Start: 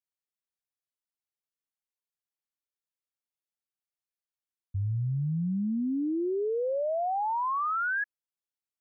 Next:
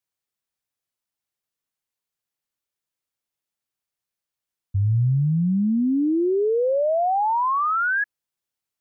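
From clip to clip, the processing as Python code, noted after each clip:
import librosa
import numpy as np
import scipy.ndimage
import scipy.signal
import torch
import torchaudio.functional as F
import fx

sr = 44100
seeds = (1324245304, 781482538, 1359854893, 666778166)

y = fx.peak_eq(x, sr, hz=120.0, db=4.0, octaves=0.77)
y = fx.rider(y, sr, range_db=10, speed_s=0.5)
y = y * librosa.db_to_amplitude(8.0)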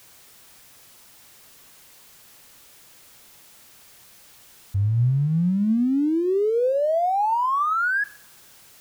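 y = x + 0.5 * 10.0 ** (-41.0 / 20.0) * np.sign(x)
y = fx.rev_double_slope(y, sr, seeds[0], early_s=0.44, late_s=2.5, knee_db=-26, drr_db=17.0)
y = y * librosa.db_to_amplitude(-1.0)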